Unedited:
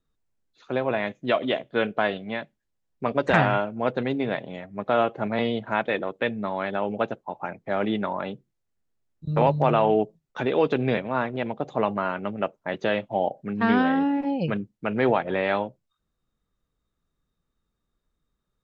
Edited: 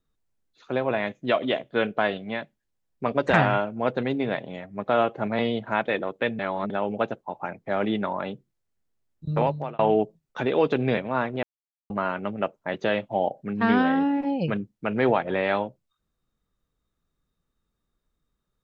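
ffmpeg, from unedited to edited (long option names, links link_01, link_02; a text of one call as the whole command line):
ffmpeg -i in.wav -filter_complex "[0:a]asplit=6[link_01][link_02][link_03][link_04][link_05][link_06];[link_01]atrim=end=6.392[link_07];[link_02]atrim=start=6.388:end=6.702,asetpts=PTS-STARTPTS,areverse[link_08];[link_03]atrim=start=6.698:end=9.79,asetpts=PTS-STARTPTS,afade=type=out:start_time=2.592:duration=0.5[link_09];[link_04]atrim=start=9.79:end=11.43,asetpts=PTS-STARTPTS,afade=type=in:duration=0.004:curve=hsin,afade=type=out:start_time=1.636:duration=0.004:curve=hsin[link_10];[link_05]atrim=start=11.43:end=11.9,asetpts=PTS-STARTPTS,volume=0[link_11];[link_06]atrim=start=11.9,asetpts=PTS-STARTPTS,afade=type=in:duration=0.004:curve=hsin[link_12];[link_07][link_08]acrossfade=duration=0.004:curve1=hsin:curve2=hsin[link_13];[link_09][link_10][link_11][link_12]concat=n=4:v=0:a=1[link_14];[link_13][link_14]acrossfade=duration=0.004:curve1=hsin:curve2=hsin" out.wav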